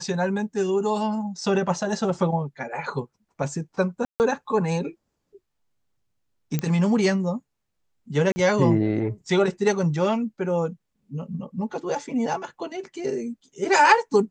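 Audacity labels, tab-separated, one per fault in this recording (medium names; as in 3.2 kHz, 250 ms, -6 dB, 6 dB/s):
4.050000	4.200000	dropout 149 ms
6.590000	6.590000	pop -11 dBFS
8.320000	8.360000	dropout 40 ms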